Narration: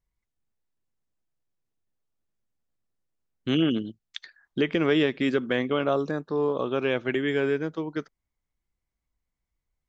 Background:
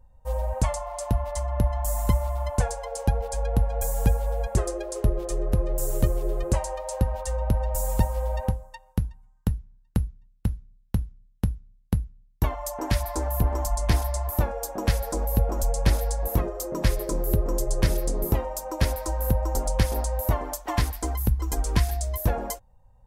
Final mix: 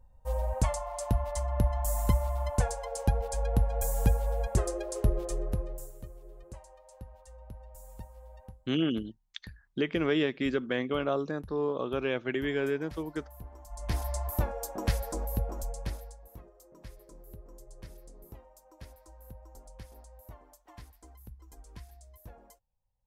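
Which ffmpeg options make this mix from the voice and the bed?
ffmpeg -i stem1.wav -i stem2.wav -filter_complex "[0:a]adelay=5200,volume=-5dB[link_01];[1:a]volume=14dB,afade=type=out:start_time=5.19:duration=0.74:silence=0.105925,afade=type=in:start_time=13.67:duration=0.46:silence=0.133352,afade=type=out:start_time=14.94:duration=1.27:silence=0.1[link_02];[link_01][link_02]amix=inputs=2:normalize=0" out.wav

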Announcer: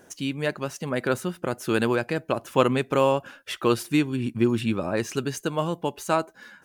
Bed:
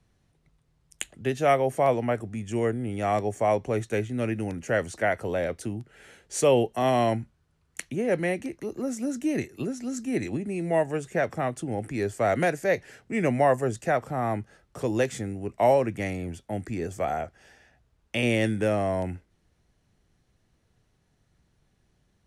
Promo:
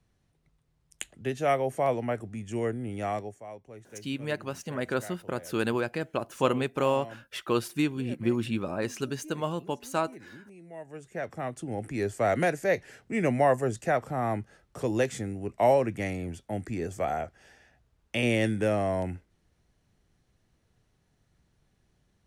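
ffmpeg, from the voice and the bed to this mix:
ffmpeg -i stem1.wav -i stem2.wav -filter_complex "[0:a]adelay=3850,volume=-5dB[link_01];[1:a]volume=14.5dB,afade=type=out:start_time=3.02:duration=0.39:silence=0.158489,afade=type=in:start_time=10.77:duration=1.26:silence=0.11885[link_02];[link_01][link_02]amix=inputs=2:normalize=0" out.wav

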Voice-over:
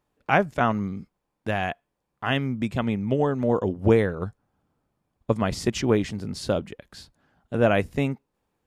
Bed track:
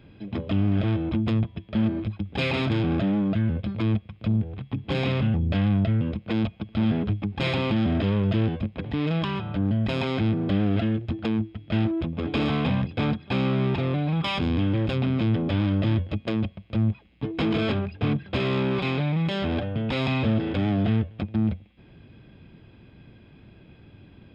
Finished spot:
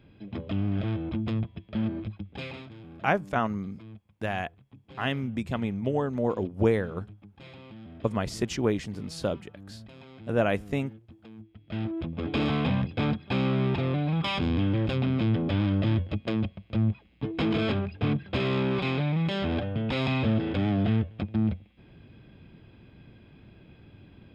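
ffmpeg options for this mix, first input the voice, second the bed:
ffmpeg -i stem1.wav -i stem2.wav -filter_complex "[0:a]adelay=2750,volume=-4.5dB[link_01];[1:a]volume=15dB,afade=type=out:start_time=2.02:duration=0.67:silence=0.141254,afade=type=in:start_time=11.37:duration=1.01:silence=0.0944061[link_02];[link_01][link_02]amix=inputs=2:normalize=0" out.wav

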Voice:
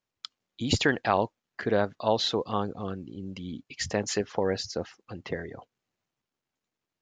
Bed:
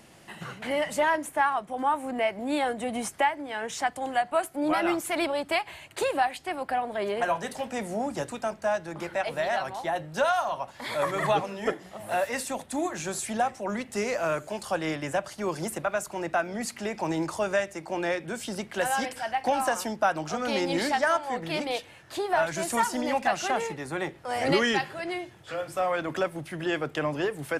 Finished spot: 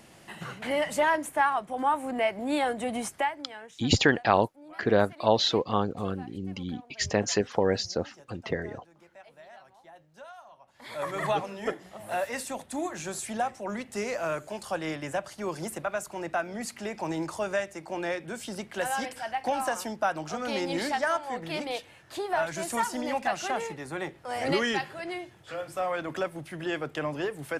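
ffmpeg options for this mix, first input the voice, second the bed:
ffmpeg -i stem1.wav -i stem2.wav -filter_complex "[0:a]adelay=3200,volume=2.5dB[link_01];[1:a]volume=19.5dB,afade=type=out:start_time=2.9:duration=0.89:silence=0.0749894,afade=type=in:start_time=10.64:duration=0.57:silence=0.105925[link_02];[link_01][link_02]amix=inputs=2:normalize=0" out.wav

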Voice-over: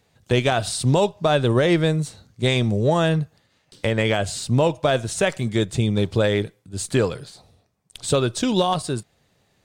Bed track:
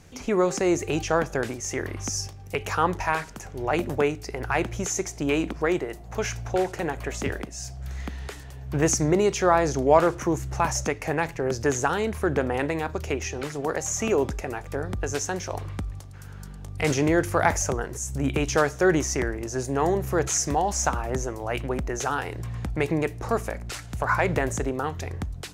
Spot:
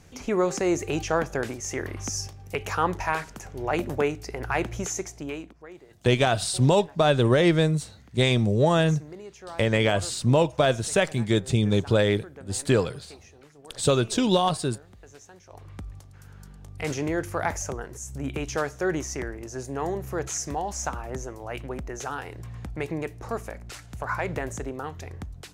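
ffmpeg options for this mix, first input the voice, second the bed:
ffmpeg -i stem1.wav -i stem2.wav -filter_complex "[0:a]adelay=5750,volume=-1.5dB[link_01];[1:a]volume=13.5dB,afade=type=out:start_time=4.8:duration=0.74:silence=0.105925,afade=type=in:start_time=15.45:duration=0.43:silence=0.177828[link_02];[link_01][link_02]amix=inputs=2:normalize=0" out.wav

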